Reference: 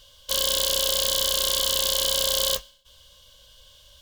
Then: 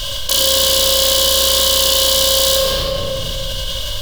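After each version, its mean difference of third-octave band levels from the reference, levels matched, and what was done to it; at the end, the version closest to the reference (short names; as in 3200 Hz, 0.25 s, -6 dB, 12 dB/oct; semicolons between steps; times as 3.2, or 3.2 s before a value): 9.5 dB: shoebox room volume 1700 m³, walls mixed, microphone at 2.9 m; fast leveller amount 70%; gain +5.5 dB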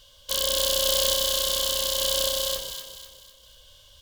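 3.0 dB: random-step tremolo; echo with dull and thin repeats by turns 0.125 s, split 930 Hz, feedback 65%, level -4 dB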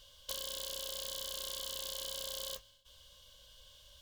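4.0 dB: de-hum 100.5 Hz, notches 3; compressor 12:1, threshold -32 dBFS, peak gain reduction 12 dB; gain -6.5 dB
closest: second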